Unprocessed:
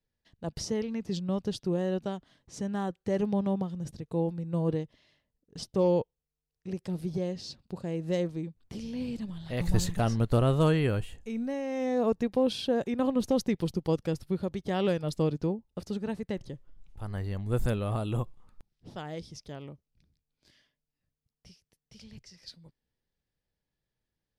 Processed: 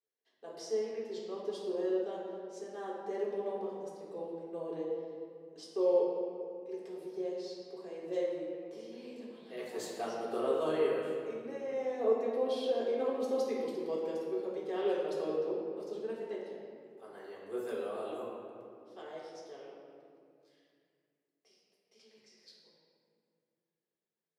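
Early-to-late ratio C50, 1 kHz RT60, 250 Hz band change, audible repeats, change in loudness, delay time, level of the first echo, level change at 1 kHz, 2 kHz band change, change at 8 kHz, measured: 0.0 dB, 2.1 s, -11.0 dB, no echo, -5.5 dB, no echo, no echo, -4.5 dB, -7.0 dB, no reading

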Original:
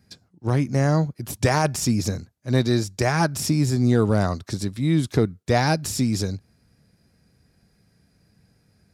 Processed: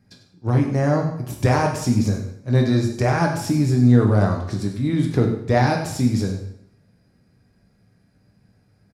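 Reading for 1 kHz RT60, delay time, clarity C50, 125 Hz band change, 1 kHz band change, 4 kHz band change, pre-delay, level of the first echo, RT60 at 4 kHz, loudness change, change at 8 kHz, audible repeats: 0.70 s, 98 ms, 6.0 dB, +3.5 dB, +2.0 dB, -4.0 dB, 4 ms, -12.5 dB, 0.65 s, +2.5 dB, -5.5 dB, 1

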